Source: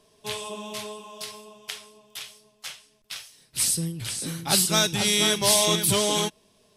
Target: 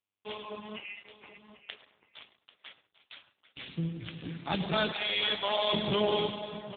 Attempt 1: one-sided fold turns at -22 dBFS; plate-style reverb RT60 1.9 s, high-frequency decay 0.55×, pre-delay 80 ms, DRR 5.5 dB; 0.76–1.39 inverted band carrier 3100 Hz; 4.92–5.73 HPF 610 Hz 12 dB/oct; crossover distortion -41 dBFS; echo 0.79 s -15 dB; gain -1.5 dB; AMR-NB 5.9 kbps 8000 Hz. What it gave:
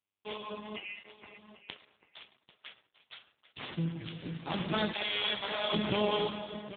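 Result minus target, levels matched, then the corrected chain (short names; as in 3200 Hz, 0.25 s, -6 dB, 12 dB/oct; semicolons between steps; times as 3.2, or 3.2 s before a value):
one-sided fold: distortion +19 dB
one-sided fold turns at -14 dBFS; plate-style reverb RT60 1.9 s, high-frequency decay 0.55×, pre-delay 80 ms, DRR 5.5 dB; 0.76–1.39 inverted band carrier 3100 Hz; 4.92–5.73 HPF 610 Hz 12 dB/oct; crossover distortion -41 dBFS; echo 0.79 s -15 dB; gain -1.5 dB; AMR-NB 5.9 kbps 8000 Hz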